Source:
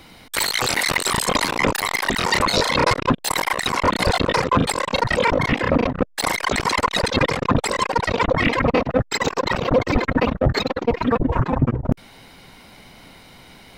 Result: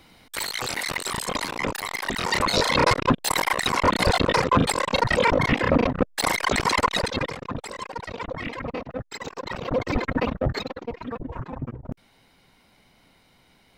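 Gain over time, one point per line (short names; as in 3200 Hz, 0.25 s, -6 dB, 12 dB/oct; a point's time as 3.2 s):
1.92 s -8 dB
2.73 s -1.5 dB
6.88 s -1.5 dB
7.44 s -13.5 dB
9.31 s -13.5 dB
9.89 s -5.5 dB
10.41 s -5.5 dB
10.96 s -14 dB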